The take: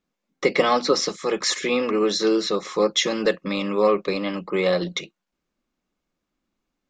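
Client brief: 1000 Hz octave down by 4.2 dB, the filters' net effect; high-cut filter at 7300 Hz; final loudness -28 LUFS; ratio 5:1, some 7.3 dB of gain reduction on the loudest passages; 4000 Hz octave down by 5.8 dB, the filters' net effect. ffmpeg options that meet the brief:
-af "lowpass=7.3k,equalizer=f=1k:t=o:g=-5,equalizer=f=4k:t=o:g=-6.5,acompressor=threshold=-23dB:ratio=5,volume=0.5dB"

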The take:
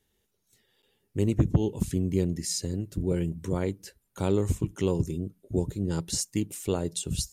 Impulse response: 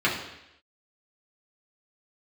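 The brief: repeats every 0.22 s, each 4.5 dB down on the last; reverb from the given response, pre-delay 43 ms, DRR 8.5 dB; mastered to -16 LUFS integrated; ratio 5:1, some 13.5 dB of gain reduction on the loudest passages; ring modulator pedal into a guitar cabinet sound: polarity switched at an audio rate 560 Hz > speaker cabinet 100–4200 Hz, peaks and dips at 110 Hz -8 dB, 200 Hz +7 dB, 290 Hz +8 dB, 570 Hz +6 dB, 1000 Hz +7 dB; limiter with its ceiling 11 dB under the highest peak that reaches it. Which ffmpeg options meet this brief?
-filter_complex "[0:a]acompressor=threshold=-32dB:ratio=5,alimiter=level_in=7dB:limit=-24dB:level=0:latency=1,volume=-7dB,aecho=1:1:220|440|660|880|1100|1320|1540|1760|1980:0.596|0.357|0.214|0.129|0.0772|0.0463|0.0278|0.0167|0.01,asplit=2[a][b];[1:a]atrim=start_sample=2205,adelay=43[c];[b][c]afir=irnorm=-1:irlink=0,volume=-24dB[d];[a][d]amix=inputs=2:normalize=0,aeval=exprs='val(0)*sgn(sin(2*PI*560*n/s))':c=same,highpass=100,equalizer=f=110:t=q:w=4:g=-8,equalizer=f=200:t=q:w=4:g=7,equalizer=f=290:t=q:w=4:g=8,equalizer=f=570:t=q:w=4:g=6,equalizer=f=1k:t=q:w=4:g=7,lowpass=f=4.2k:w=0.5412,lowpass=f=4.2k:w=1.3066,volume=21dB"

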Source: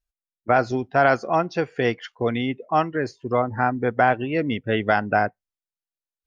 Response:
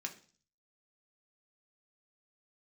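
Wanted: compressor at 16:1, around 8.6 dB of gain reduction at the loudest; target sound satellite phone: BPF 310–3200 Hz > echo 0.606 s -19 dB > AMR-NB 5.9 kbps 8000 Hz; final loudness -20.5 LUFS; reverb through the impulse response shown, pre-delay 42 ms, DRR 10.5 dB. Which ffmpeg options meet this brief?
-filter_complex "[0:a]acompressor=threshold=-21dB:ratio=16,asplit=2[a][b];[1:a]atrim=start_sample=2205,adelay=42[c];[b][c]afir=irnorm=-1:irlink=0,volume=-9.5dB[d];[a][d]amix=inputs=2:normalize=0,highpass=310,lowpass=3.2k,aecho=1:1:606:0.112,volume=9.5dB" -ar 8000 -c:a libopencore_amrnb -b:a 5900

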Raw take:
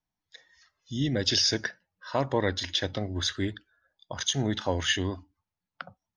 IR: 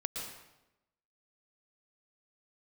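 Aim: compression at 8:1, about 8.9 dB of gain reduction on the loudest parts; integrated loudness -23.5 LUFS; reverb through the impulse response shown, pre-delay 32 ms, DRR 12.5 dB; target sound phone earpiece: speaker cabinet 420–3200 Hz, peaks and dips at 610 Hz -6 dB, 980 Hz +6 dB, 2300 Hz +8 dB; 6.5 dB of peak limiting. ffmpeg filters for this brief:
-filter_complex "[0:a]acompressor=threshold=-30dB:ratio=8,alimiter=level_in=0.5dB:limit=-24dB:level=0:latency=1,volume=-0.5dB,asplit=2[a][b];[1:a]atrim=start_sample=2205,adelay=32[c];[b][c]afir=irnorm=-1:irlink=0,volume=-14.5dB[d];[a][d]amix=inputs=2:normalize=0,highpass=420,equalizer=f=610:t=q:w=4:g=-6,equalizer=f=980:t=q:w=4:g=6,equalizer=f=2.3k:t=q:w=4:g=8,lowpass=f=3.2k:w=0.5412,lowpass=f=3.2k:w=1.3066,volume=17.5dB"

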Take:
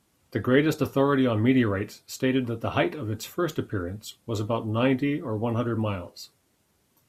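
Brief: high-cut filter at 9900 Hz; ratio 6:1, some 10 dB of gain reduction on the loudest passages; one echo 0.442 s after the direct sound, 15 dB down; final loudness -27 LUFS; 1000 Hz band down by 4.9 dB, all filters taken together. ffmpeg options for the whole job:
-af "lowpass=9.9k,equalizer=f=1k:t=o:g=-6.5,acompressor=threshold=-27dB:ratio=6,aecho=1:1:442:0.178,volume=6dB"

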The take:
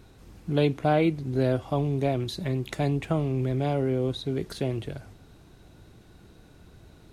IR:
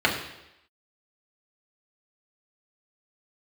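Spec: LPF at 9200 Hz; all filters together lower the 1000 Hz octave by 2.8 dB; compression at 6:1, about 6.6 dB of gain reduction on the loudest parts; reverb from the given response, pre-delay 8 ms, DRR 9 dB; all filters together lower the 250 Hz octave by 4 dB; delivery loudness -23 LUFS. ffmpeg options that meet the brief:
-filter_complex "[0:a]lowpass=9.2k,equalizer=f=250:t=o:g=-5.5,equalizer=f=1k:t=o:g=-4,acompressor=threshold=-27dB:ratio=6,asplit=2[a][b];[1:a]atrim=start_sample=2205,adelay=8[c];[b][c]afir=irnorm=-1:irlink=0,volume=-26dB[d];[a][d]amix=inputs=2:normalize=0,volume=9.5dB"

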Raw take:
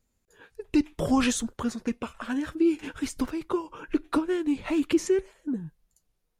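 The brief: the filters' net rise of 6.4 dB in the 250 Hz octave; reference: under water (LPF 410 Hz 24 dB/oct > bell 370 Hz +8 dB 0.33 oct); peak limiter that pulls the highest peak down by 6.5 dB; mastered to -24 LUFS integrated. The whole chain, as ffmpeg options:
-af "equalizer=f=250:t=o:g=5.5,alimiter=limit=-15.5dB:level=0:latency=1,lowpass=f=410:w=0.5412,lowpass=f=410:w=1.3066,equalizer=f=370:t=o:w=0.33:g=8,volume=0.5dB"

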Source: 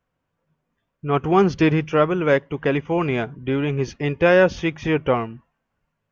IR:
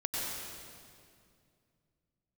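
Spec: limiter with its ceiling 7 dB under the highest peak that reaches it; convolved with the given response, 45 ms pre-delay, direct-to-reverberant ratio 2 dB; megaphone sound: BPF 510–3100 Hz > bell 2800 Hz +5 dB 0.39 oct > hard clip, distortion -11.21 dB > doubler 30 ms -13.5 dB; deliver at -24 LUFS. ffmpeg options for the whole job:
-filter_complex "[0:a]alimiter=limit=-12dB:level=0:latency=1,asplit=2[a][b];[1:a]atrim=start_sample=2205,adelay=45[c];[b][c]afir=irnorm=-1:irlink=0,volume=-7.5dB[d];[a][d]amix=inputs=2:normalize=0,highpass=510,lowpass=3.1k,equalizer=f=2.8k:t=o:w=0.39:g=5,asoftclip=type=hard:threshold=-21dB,asplit=2[e][f];[f]adelay=30,volume=-13.5dB[g];[e][g]amix=inputs=2:normalize=0,volume=2.5dB"

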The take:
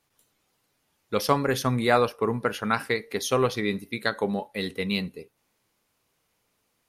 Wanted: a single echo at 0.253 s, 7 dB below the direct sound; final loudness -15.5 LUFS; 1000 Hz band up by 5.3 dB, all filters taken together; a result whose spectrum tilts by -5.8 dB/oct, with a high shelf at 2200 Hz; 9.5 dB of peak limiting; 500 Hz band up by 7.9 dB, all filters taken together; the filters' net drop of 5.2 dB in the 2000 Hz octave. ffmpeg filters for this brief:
-af "equalizer=f=500:t=o:g=8,equalizer=f=1k:t=o:g=8,equalizer=f=2k:t=o:g=-7,highshelf=f=2.2k:g=-8,alimiter=limit=-10.5dB:level=0:latency=1,aecho=1:1:253:0.447,volume=8dB"

